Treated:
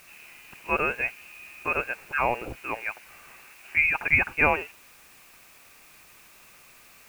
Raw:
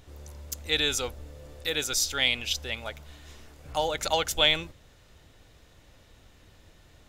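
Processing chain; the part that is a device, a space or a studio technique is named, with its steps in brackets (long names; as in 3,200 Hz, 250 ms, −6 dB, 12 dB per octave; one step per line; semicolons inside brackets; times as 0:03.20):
scrambled radio voice (band-pass filter 360–3,100 Hz; voice inversion scrambler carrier 3,000 Hz; white noise bed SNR 25 dB)
0:01.90–0:03.84: low-shelf EQ 370 Hz −6 dB
level +6 dB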